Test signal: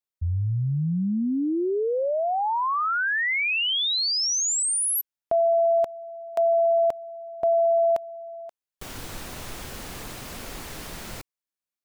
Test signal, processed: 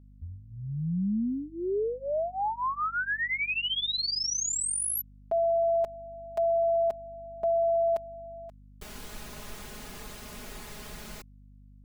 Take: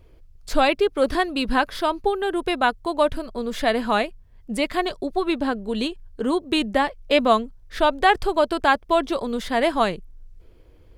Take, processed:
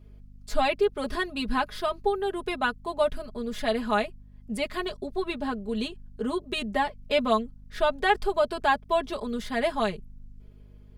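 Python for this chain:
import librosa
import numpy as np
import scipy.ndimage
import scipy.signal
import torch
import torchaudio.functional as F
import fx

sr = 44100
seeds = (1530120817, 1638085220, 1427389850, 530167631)

y = x + 0.92 * np.pad(x, (int(4.8 * sr / 1000.0), 0))[:len(x)]
y = fx.add_hum(y, sr, base_hz=50, snr_db=22)
y = y * 10.0 ** (-8.5 / 20.0)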